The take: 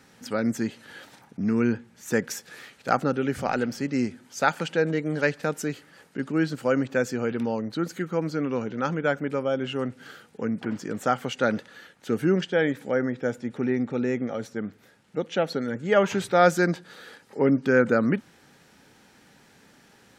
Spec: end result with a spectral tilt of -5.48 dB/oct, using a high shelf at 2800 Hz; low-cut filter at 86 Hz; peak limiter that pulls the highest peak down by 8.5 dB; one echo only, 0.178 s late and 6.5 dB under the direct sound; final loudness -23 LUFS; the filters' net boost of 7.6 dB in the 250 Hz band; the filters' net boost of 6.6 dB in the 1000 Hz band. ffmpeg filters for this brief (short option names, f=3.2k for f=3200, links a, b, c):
-af "highpass=86,equalizer=f=250:t=o:g=8.5,equalizer=f=1k:t=o:g=8.5,highshelf=f=2.8k:g=5.5,alimiter=limit=-8.5dB:level=0:latency=1,aecho=1:1:178:0.473,volume=-2dB"